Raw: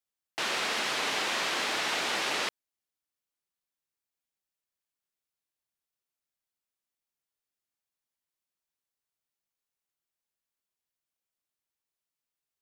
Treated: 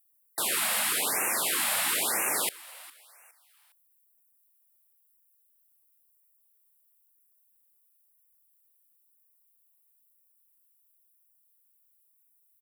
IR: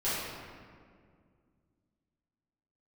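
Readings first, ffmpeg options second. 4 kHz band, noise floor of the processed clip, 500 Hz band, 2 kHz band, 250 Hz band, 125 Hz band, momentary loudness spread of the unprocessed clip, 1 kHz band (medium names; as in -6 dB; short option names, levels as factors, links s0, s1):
-1.5 dB, -68 dBFS, -1.0 dB, -1.0 dB, -1.0 dB, 0.0 dB, 5 LU, -1.0 dB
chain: -filter_complex "[0:a]aexciter=amount=7.9:drive=8.5:freq=8600,asplit=4[s0][s1][s2][s3];[s1]adelay=410,afreqshift=140,volume=0.1[s4];[s2]adelay=820,afreqshift=280,volume=0.0372[s5];[s3]adelay=1230,afreqshift=420,volume=0.0136[s6];[s0][s4][s5][s6]amix=inputs=4:normalize=0,afftfilt=real='re*(1-between(b*sr/1024,330*pow(4100/330,0.5+0.5*sin(2*PI*1*pts/sr))/1.41,330*pow(4100/330,0.5+0.5*sin(2*PI*1*pts/sr))*1.41))':imag='im*(1-between(b*sr/1024,330*pow(4100/330,0.5+0.5*sin(2*PI*1*pts/sr))/1.41,330*pow(4100/330,0.5+0.5*sin(2*PI*1*pts/sr))*1.41))':win_size=1024:overlap=0.75"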